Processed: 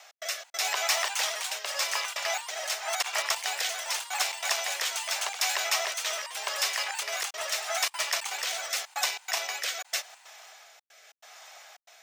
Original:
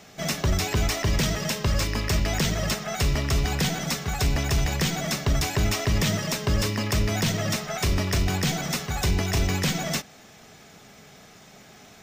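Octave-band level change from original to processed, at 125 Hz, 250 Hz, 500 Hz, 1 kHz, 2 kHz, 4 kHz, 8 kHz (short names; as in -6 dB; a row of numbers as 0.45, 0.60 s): under -40 dB, under -40 dB, -7.5 dB, -1.0 dB, 0.0 dB, 0.0 dB, +0.5 dB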